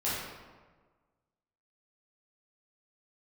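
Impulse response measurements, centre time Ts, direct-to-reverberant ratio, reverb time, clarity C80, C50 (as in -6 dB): 92 ms, -10.0 dB, 1.4 s, 1.5 dB, -1.5 dB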